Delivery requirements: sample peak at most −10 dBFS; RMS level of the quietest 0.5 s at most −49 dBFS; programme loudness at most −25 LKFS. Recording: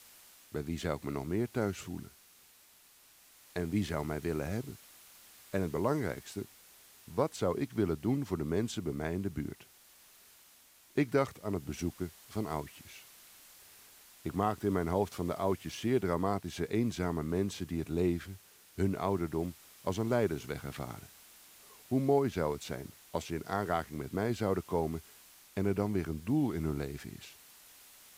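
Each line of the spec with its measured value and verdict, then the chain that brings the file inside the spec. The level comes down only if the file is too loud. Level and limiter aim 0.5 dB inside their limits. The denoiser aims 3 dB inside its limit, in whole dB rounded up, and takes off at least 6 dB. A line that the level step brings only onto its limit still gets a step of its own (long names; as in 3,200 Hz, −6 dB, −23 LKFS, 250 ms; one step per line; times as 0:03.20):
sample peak −15.5 dBFS: in spec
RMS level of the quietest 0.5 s −61 dBFS: in spec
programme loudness −34.5 LKFS: in spec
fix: no processing needed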